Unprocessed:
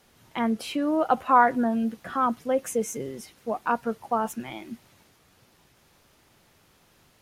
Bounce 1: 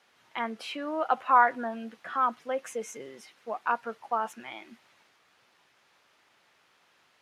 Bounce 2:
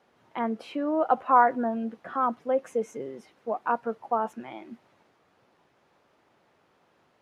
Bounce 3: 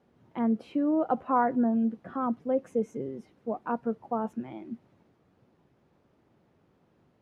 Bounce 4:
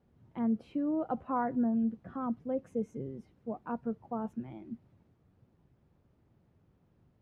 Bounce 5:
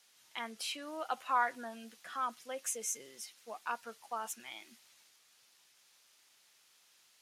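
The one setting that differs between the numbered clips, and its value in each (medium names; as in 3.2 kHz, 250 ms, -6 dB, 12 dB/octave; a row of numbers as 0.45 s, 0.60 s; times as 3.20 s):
band-pass filter, frequency: 1.8 kHz, 680 Hz, 250 Hz, 100 Hz, 6.4 kHz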